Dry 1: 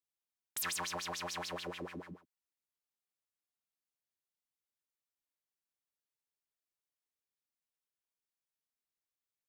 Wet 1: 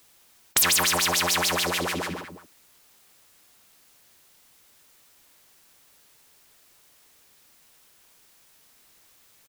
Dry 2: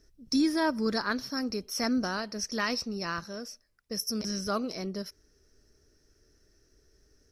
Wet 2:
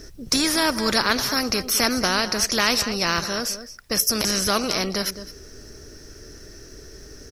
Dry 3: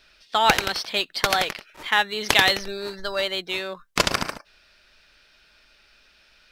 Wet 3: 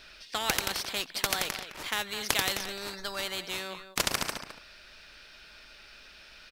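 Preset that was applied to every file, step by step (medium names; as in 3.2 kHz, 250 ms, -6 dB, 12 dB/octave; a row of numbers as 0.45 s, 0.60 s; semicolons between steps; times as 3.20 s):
delay 211 ms -20.5 dB; spectrum-flattening compressor 2:1; peak normalisation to -6 dBFS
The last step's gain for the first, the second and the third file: +19.5 dB, +11.0 dB, -5.0 dB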